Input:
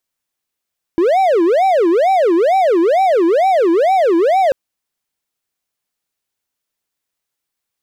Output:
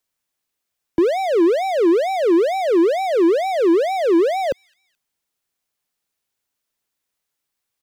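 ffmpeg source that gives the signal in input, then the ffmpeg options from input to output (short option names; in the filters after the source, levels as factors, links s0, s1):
-f lavfi -i "aevalsrc='0.422*(1-4*abs(mod((552.5*t-223.5/(2*PI*2.2)*sin(2*PI*2.2*t))+0.25,1)-0.5))':d=3.54:s=44100"
-filter_complex "[0:a]acrossover=split=190|410|2200[s0][s1][s2][s3];[s2]alimiter=limit=0.0891:level=0:latency=1[s4];[s3]aecho=1:1:215|430:0.0708|0.0248[s5];[s0][s1][s4][s5]amix=inputs=4:normalize=0"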